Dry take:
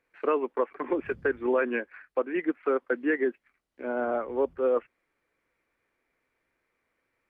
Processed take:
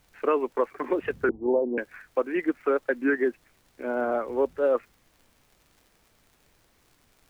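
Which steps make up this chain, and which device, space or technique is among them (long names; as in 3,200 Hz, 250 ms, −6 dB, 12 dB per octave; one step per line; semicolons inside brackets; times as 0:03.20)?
warped LP (wow of a warped record 33 1/3 rpm, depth 160 cents; surface crackle; pink noise bed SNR 36 dB)
0:01.29–0:01.78: Butterworth low-pass 910 Hz 72 dB per octave
level +2 dB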